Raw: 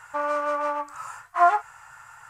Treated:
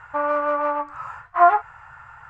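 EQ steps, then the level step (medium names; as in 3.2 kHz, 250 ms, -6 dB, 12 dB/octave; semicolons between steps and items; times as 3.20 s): low-pass 2.3 kHz 12 dB/octave; peaking EQ 71 Hz +4.5 dB 0.74 oct; bass shelf 220 Hz +6.5 dB; +3.5 dB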